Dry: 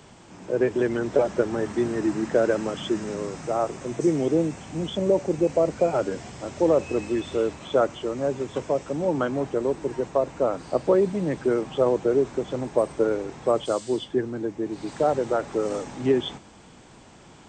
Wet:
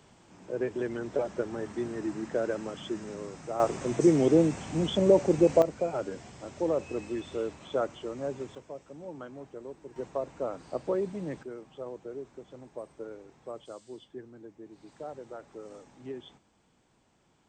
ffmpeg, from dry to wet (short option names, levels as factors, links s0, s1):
-af "asetnsamples=n=441:p=0,asendcmd='3.6 volume volume 0.5dB;5.62 volume volume -8.5dB;8.55 volume volume -18dB;9.96 volume volume -10dB;11.43 volume volume -19dB',volume=0.355"